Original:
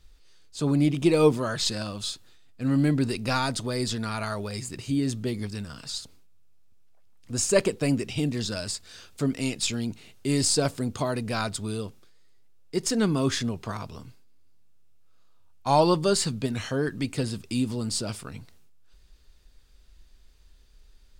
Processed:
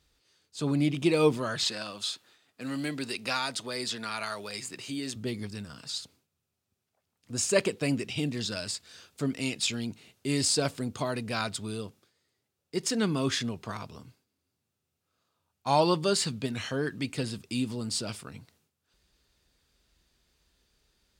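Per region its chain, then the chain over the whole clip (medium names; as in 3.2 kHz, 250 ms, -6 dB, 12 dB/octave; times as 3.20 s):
1.63–5.16 s: high-pass 480 Hz 6 dB/octave + three bands compressed up and down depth 40%
whole clip: high-pass 93 Hz; dynamic bell 2.8 kHz, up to +5 dB, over -43 dBFS, Q 0.78; trim -4 dB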